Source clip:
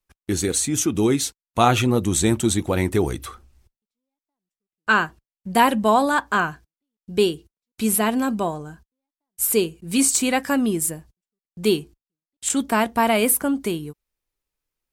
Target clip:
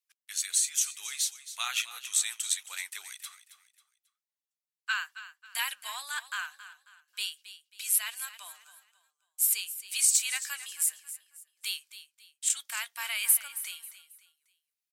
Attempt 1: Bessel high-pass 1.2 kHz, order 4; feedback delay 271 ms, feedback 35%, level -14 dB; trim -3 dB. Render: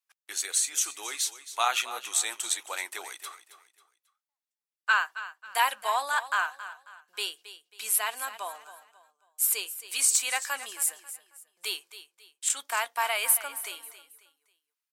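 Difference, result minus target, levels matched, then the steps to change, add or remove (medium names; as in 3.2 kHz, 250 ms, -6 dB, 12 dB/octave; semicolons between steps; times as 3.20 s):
1 kHz band +12.5 dB
change: Bessel high-pass 2.5 kHz, order 4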